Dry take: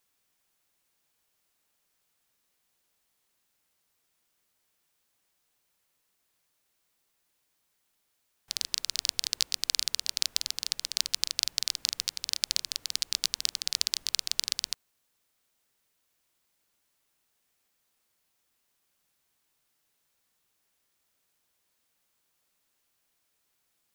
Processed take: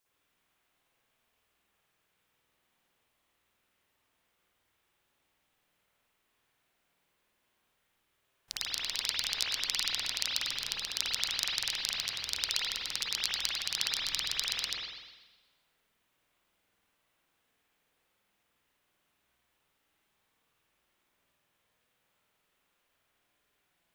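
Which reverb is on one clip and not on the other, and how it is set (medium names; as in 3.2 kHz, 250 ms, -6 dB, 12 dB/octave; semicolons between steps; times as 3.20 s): spring tank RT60 1.2 s, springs 50 ms, chirp 75 ms, DRR -10 dB; trim -5.5 dB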